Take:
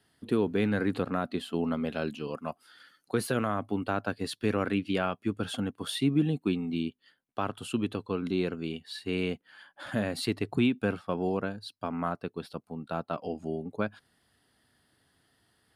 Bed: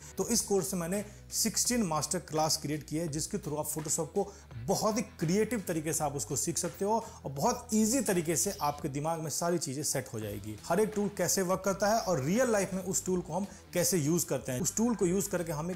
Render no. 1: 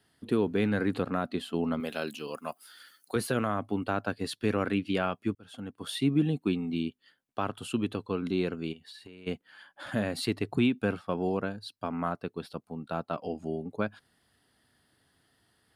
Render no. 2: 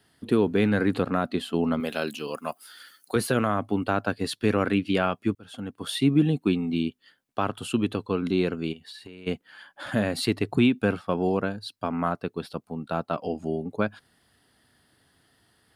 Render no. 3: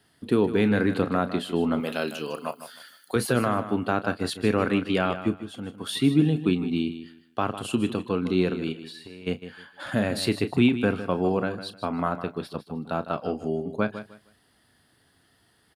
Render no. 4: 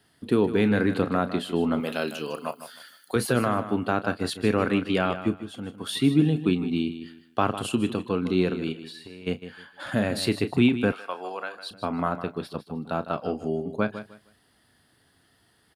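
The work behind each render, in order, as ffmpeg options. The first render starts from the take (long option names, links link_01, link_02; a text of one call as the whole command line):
ffmpeg -i in.wav -filter_complex "[0:a]asettb=1/sr,asplit=3[link_01][link_02][link_03];[link_01]atrim=end=1.804[link_04];[link_02]atrim=start=1.8:end=3.16,asetpts=PTS-STARTPTS,afade=type=in:duration=0.004:curve=qsin,afade=type=out:start_time=1.356:duration=0.004:curve=qsin,aemphasis=mode=production:type=bsi[link_05];[link_03]atrim=start=3.156[link_06];[link_04][link_05]acrossfade=duration=0.004:curve1=hsin:curve2=qsin[link_07];[link_07][link_06]acrossfade=duration=0.004:curve1=qsin:curve2=hsin,asplit=3[link_08][link_09][link_10];[link_08]afade=type=out:start_time=8.72:duration=0.02[link_11];[link_09]acompressor=threshold=-44dB:ratio=16:attack=3.2:release=140:knee=1:detection=peak,afade=type=in:start_time=8.72:duration=0.02,afade=type=out:start_time=9.26:duration=0.02[link_12];[link_10]afade=type=in:start_time=9.26:duration=0.02[link_13];[link_11][link_12][link_13]amix=inputs=3:normalize=0,asplit=2[link_14][link_15];[link_14]atrim=end=5.35,asetpts=PTS-STARTPTS,afade=type=out:start_time=5.346:duration=0.004:curve=hsin[link_16];[link_15]atrim=start=5.35,asetpts=PTS-STARTPTS,afade=type=in:duration=0.72[link_17];[link_16][link_17]concat=n=2:v=0:a=1" out.wav
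ffmpeg -i in.wav -af "volume=5dB" out.wav
ffmpeg -i in.wav -filter_complex "[0:a]asplit=2[link_01][link_02];[link_02]adelay=33,volume=-13.5dB[link_03];[link_01][link_03]amix=inputs=2:normalize=0,asplit=2[link_04][link_05];[link_05]aecho=0:1:154|308|462:0.251|0.0578|0.0133[link_06];[link_04][link_06]amix=inputs=2:normalize=0" out.wav
ffmpeg -i in.wav -filter_complex "[0:a]asettb=1/sr,asplit=3[link_01][link_02][link_03];[link_01]atrim=end=10.924[link_04];[link_02]atrim=start=10.92:end=11.71,asetpts=PTS-STARTPTS,afade=type=in:duration=0.004:curve=qsin,afade=type=out:start_time=0.786:duration=0.004:curve=qsin,highpass=840[link_05];[link_03]atrim=start=11.706[link_06];[link_04][link_05]acrossfade=duration=0.004:curve1=hsin:curve2=qsin[link_07];[link_07][link_06]acrossfade=duration=0.004:curve1=qsin:curve2=hsin,asplit=3[link_08][link_09][link_10];[link_08]atrim=end=7.012[link_11];[link_09]atrim=start=7.008:end=7.692,asetpts=PTS-STARTPTS,volume=3dB[link_12];[link_10]atrim=start=7.688[link_13];[link_11][link_12]acrossfade=duration=0.004:curve1=hsin:curve2=hsin[link_14];[link_14][link_13]acrossfade=duration=0.004:curve1=hsin:curve2=hsin" out.wav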